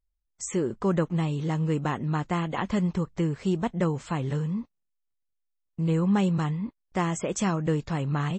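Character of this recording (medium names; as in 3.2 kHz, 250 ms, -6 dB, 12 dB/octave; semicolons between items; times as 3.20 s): noise floor -79 dBFS; spectral tilt -6.5 dB/octave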